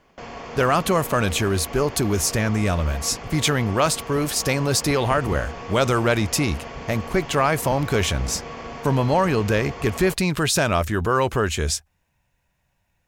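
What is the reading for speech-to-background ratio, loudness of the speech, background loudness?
13.0 dB, −22.0 LKFS, −35.0 LKFS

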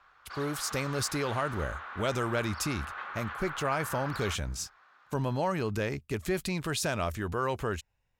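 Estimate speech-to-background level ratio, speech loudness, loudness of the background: 8.0 dB, −32.5 LKFS, −40.5 LKFS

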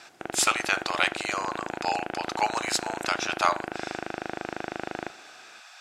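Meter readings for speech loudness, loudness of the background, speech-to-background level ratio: −27.5 LKFS, −35.5 LKFS, 8.0 dB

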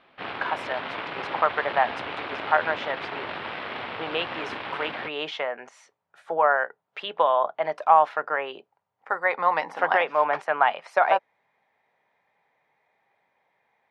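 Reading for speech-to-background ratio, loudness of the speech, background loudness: 8.5 dB, −25.0 LKFS, −33.5 LKFS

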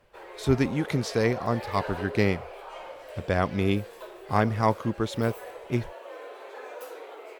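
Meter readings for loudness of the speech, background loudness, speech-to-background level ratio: −27.5 LKFS, −40.5 LKFS, 13.0 dB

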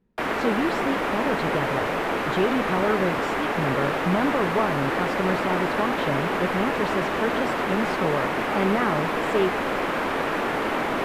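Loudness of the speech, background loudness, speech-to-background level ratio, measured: −28.0 LKFS, −25.5 LKFS, −2.5 dB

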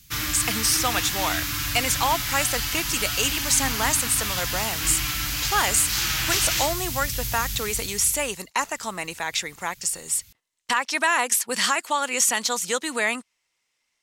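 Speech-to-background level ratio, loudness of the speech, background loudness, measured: 1.0 dB, −24.0 LKFS, −25.0 LKFS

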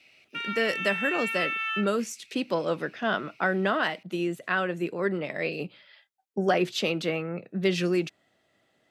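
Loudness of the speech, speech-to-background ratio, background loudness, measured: −28.5 LKFS, 1.5 dB, −30.0 LKFS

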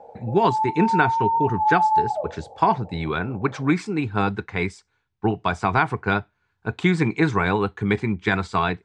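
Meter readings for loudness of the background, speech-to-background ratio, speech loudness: −23.0 LKFS, −0.5 dB, −23.5 LKFS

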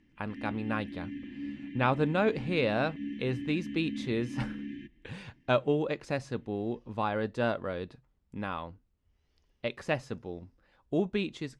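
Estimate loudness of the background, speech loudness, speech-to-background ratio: −40.5 LKFS, −32.5 LKFS, 8.0 dB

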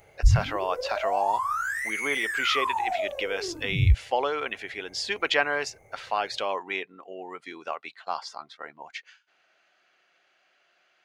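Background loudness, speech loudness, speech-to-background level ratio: −28.0 LKFS, −30.5 LKFS, −2.5 dB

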